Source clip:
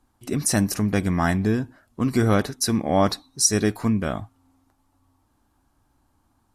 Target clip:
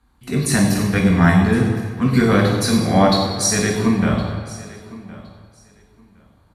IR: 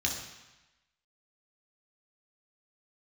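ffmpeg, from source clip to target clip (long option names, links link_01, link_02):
-filter_complex "[0:a]aecho=1:1:1064|2128:0.106|0.0191[link_01];[1:a]atrim=start_sample=2205,asetrate=27783,aresample=44100[link_02];[link_01][link_02]afir=irnorm=-1:irlink=0,volume=-4dB"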